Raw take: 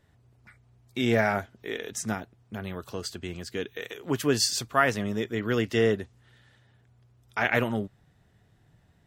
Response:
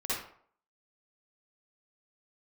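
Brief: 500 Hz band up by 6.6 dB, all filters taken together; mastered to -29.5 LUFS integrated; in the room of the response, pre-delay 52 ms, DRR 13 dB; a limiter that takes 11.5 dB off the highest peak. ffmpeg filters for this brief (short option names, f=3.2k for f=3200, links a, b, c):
-filter_complex "[0:a]equalizer=f=500:t=o:g=8,alimiter=limit=-17dB:level=0:latency=1,asplit=2[a][b];[1:a]atrim=start_sample=2205,adelay=52[c];[b][c]afir=irnorm=-1:irlink=0,volume=-19dB[d];[a][d]amix=inputs=2:normalize=0,volume=-0.5dB"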